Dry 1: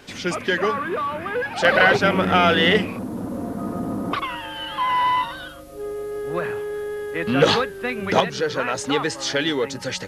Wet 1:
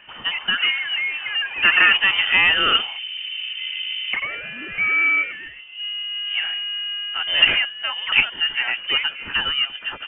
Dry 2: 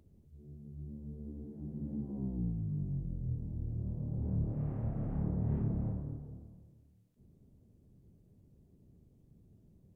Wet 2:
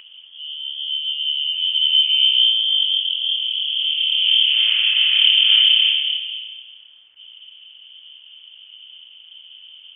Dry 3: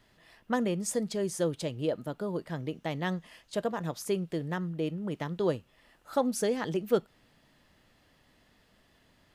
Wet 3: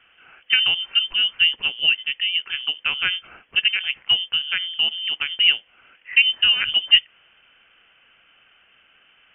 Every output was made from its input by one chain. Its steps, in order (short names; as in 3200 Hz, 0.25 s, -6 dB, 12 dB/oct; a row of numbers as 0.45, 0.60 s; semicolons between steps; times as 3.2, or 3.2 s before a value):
three-band isolator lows -22 dB, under 210 Hz, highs -18 dB, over 2500 Hz; inverted band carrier 3300 Hz; normalise peaks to -2 dBFS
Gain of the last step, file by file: +1.5, +28.5, +12.0 dB